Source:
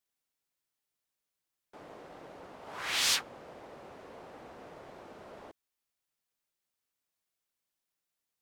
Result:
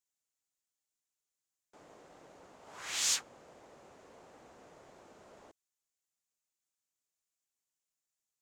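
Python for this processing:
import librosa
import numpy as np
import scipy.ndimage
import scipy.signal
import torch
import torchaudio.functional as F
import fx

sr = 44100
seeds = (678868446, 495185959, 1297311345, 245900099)

y = fx.peak_eq(x, sr, hz=7000.0, db=12.0, octaves=0.67)
y = y * librosa.db_to_amplitude(-8.0)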